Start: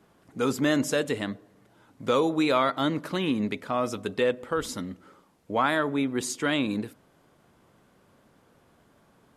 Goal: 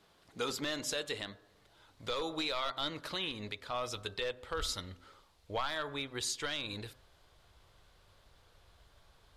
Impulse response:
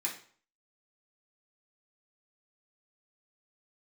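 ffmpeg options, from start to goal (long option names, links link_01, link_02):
-af "bandreject=frequency=129.9:width_type=h:width=4,bandreject=frequency=259.8:width_type=h:width=4,bandreject=frequency=389.7:width_type=h:width=4,bandreject=frequency=519.6:width_type=h:width=4,bandreject=frequency=649.5:width_type=h:width=4,bandreject=frequency=779.4:width_type=h:width=4,bandreject=frequency=909.3:width_type=h:width=4,bandreject=frequency=1039.2:width_type=h:width=4,bandreject=frequency=1169.1:width_type=h:width=4,bandreject=frequency=1299:width_type=h:width=4,bandreject=frequency=1428.9:width_type=h:width=4,bandreject=frequency=1558.8:width_type=h:width=4,bandreject=frequency=1688.7:width_type=h:width=4,aeval=exprs='clip(val(0),-1,0.133)':channel_layout=same,equalizer=frequency=125:width_type=o:width=1:gain=-3,equalizer=frequency=250:width_type=o:width=1:gain=-8,equalizer=frequency=4000:width_type=o:width=1:gain=11,alimiter=limit=-20.5dB:level=0:latency=1:release=322,asubboost=boost=10:cutoff=65,volume=-4dB"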